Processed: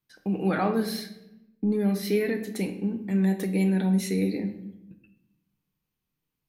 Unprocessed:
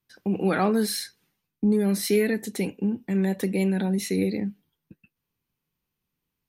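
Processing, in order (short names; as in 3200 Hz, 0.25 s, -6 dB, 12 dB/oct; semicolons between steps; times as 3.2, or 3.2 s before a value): 0.48–2.56 bell 8300 Hz -11.5 dB 1 oct; reverb RT60 0.90 s, pre-delay 6 ms, DRR 6.5 dB; gain -3 dB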